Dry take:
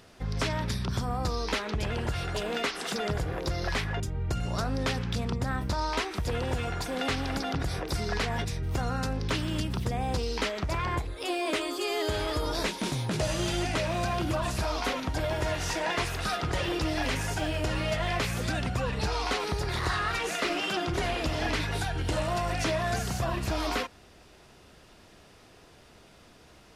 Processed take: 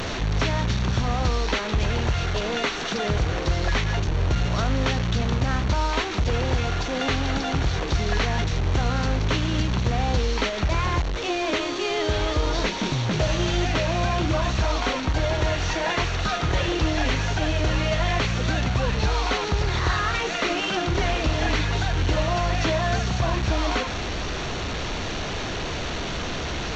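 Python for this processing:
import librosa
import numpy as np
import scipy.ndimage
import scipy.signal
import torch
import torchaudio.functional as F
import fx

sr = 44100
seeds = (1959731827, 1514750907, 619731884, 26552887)

y = fx.delta_mod(x, sr, bps=32000, step_db=-28.0)
y = fx.low_shelf(y, sr, hz=84.0, db=7.0)
y = fx.notch(y, sr, hz=5000.0, q=6.5)
y = F.gain(torch.from_numpy(y), 4.5).numpy()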